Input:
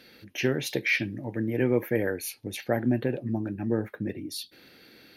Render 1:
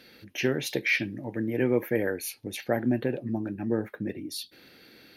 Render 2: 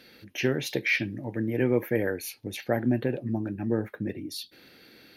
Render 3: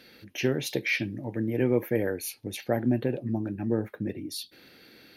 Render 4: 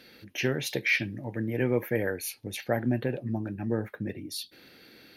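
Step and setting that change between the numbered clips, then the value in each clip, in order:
dynamic equaliser, frequency: 100, 9,500, 1,700, 310 Hertz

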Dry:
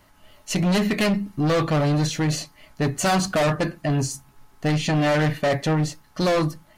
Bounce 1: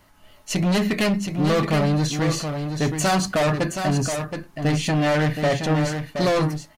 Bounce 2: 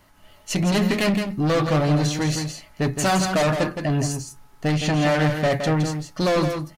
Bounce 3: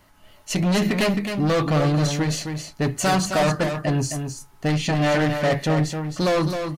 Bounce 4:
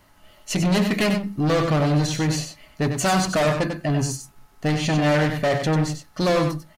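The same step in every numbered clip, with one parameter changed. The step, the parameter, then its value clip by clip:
single-tap delay, delay time: 722, 166, 264, 95 milliseconds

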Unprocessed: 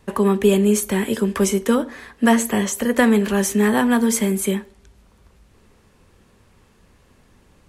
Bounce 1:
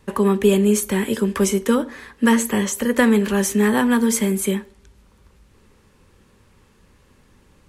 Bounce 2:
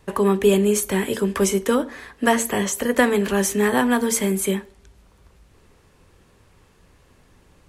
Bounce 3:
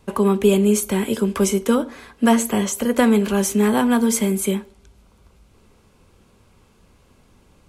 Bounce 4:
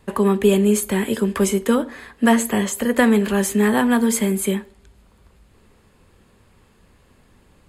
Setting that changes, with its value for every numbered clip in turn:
notch filter, centre frequency: 690, 220, 1,800, 5,800 Hertz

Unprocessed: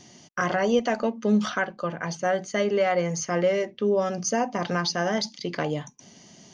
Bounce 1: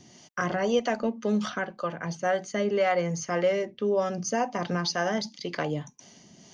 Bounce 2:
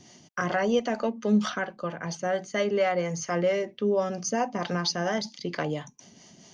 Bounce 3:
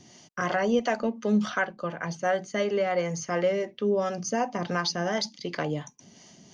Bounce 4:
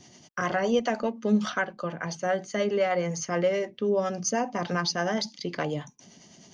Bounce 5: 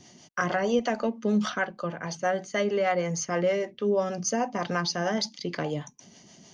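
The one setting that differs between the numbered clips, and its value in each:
two-band tremolo in antiphase, speed: 1.9, 4.4, 2.8, 9.7, 6.4 Hertz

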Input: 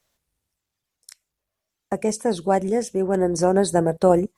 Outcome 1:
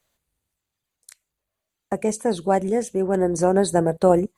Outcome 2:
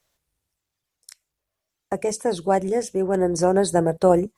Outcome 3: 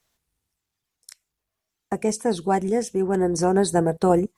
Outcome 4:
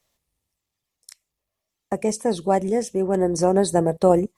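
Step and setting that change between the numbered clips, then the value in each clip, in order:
notch filter, centre frequency: 5,400, 220, 570, 1,500 Hertz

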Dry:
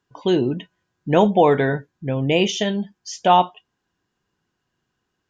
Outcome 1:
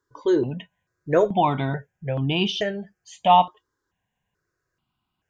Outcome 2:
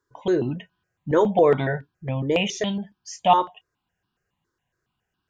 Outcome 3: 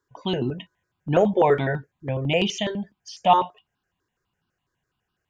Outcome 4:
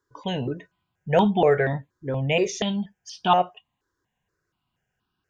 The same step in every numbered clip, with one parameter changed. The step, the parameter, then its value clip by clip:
step-sequenced phaser, speed: 2.3, 7.2, 12, 4.2 Hertz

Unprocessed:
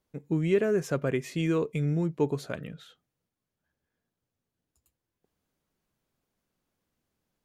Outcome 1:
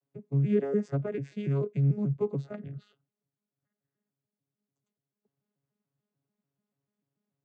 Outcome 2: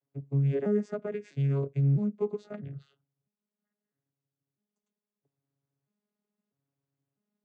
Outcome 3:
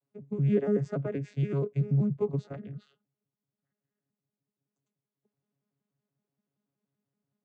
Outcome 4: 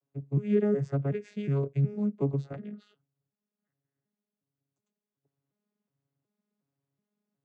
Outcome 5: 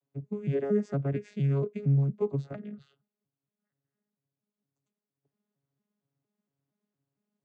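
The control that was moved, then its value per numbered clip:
vocoder with an arpeggio as carrier, a note every: 146, 651, 95, 367, 231 milliseconds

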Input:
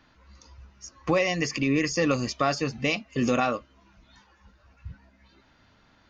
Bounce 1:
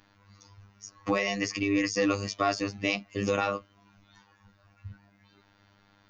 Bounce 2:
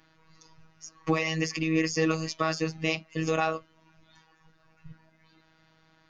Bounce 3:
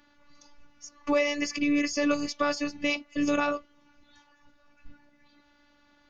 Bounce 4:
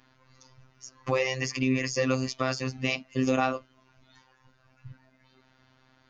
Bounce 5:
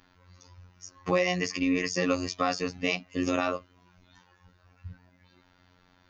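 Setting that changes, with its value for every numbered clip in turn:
phases set to zero, frequency: 100, 160, 290, 130, 90 Hertz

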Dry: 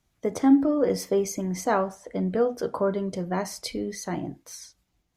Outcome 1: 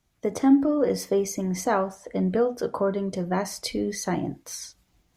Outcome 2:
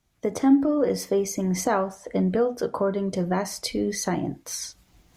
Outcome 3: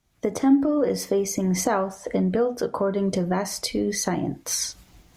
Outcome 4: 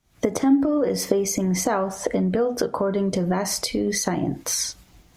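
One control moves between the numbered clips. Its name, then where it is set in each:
camcorder AGC, rising by: 5.5, 15, 37, 90 dB per second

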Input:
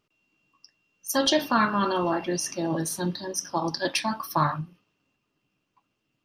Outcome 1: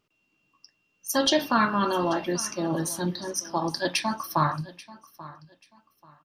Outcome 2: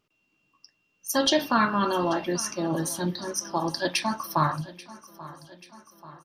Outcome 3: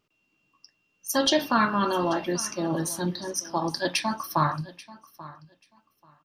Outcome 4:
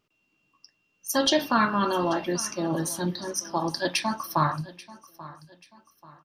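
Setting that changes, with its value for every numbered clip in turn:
repeating echo, feedback: 25, 59, 17, 38%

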